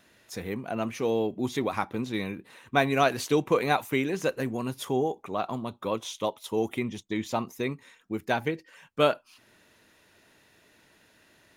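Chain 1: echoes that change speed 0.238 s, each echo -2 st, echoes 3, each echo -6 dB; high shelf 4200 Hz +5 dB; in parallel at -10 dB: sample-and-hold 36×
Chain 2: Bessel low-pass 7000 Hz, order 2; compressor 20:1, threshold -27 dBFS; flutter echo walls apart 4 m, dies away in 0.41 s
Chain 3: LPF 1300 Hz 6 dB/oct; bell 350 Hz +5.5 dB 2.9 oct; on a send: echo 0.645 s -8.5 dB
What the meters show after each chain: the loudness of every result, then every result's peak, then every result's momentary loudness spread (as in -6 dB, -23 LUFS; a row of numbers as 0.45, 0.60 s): -27.5, -32.0, -25.5 LUFS; -5.5, -14.0, -6.5 dBFS; 13, 6, 10 LU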